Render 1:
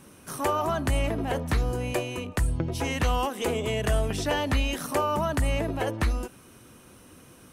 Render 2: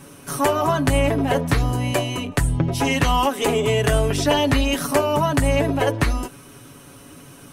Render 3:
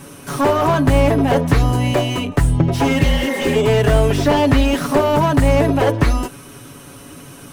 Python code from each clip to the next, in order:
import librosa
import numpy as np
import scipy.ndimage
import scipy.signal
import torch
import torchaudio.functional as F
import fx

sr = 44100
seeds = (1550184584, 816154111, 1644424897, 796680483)

y1 = x + 0.68 * np.pad(x, (int(7.1 * sr / 1000.0), 0))[:len(x)]
y1 = y1 * librosa.db_to_amplitude(6.5)
y2 = fx.spec_repair(y1, sr, seeds[0], start_s=3.03, length_s=0.51, low_hz=420.0, high_hz=2300.0, source='before')
y2 = fx.slew_limit(y2, sr, full_power_hz=100.0)
y2 = y2 * librosa.db_to_amplitude(5.5)